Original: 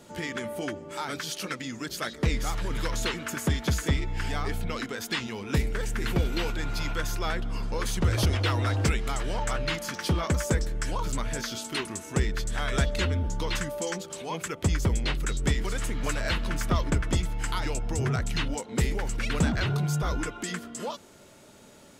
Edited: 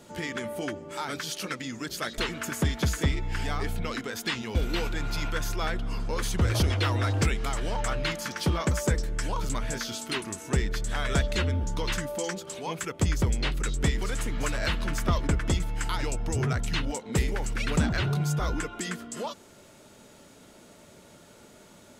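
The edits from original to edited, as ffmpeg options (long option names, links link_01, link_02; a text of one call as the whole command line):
ffmpeg -i in.wav -filter_complex "[0:a]asplit=3[link_01][link_02][link_03];[link_01]atrim=end=2.182[link_04];[link_02]atrim=start=3.028:end=5.402[link_05];[link_03]atrim=start=6.178[link_06];[link_04][link_05]acrossfade=duration=0.004:curve1=hsin:curve2=hsin[link_07];[link_07][link_06]acrossfade=duration=0.004:curve1=hsin:curve2=hsin" out.wav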